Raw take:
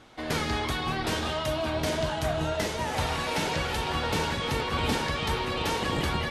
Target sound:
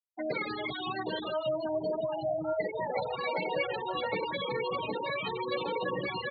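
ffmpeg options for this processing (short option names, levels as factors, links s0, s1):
-filter_complex "[0:a]equalizer=f=4300:t=o:w=0.36:g=6,asplit=2[s0][s1];[s1]adelay=16,volume=0.562[s2];[s0][s2]amix=inputs=2:normalize=0,acompressor=threshold=0.0282:ratio=2.5,crystalizer=i=0.5:c=0,afftfilt=real='re*gte(hypot(re,im),0.0562)':imag='im*gte(hypot(re,im),0.0562)':win_size=1024:overlap=0.75,highpass=f=150:w=0.5412,highpass=f=150:w=1.3066,equalizer=f=240:t=q:w=4:g=-8,equalizer=f=530:t=q:w=4:g=9,equalizer=f=2200:t=q:w=4:g=10,equalizer=f=4900:t=q:w=4:g=-8,lowpass=f=6700:w=0.5412,lowpass=f=6700:w=1.3066"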